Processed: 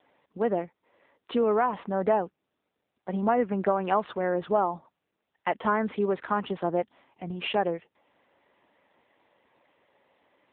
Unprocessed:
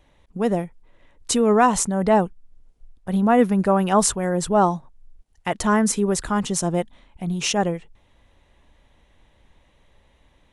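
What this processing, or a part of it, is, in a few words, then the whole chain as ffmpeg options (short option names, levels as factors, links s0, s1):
voicemail: -af "highpass=320,lowpass=2600,acompressor=threshold=0.112:ratio=8" -ar 8000 -c:a libopencore_amrnb -b:a 7950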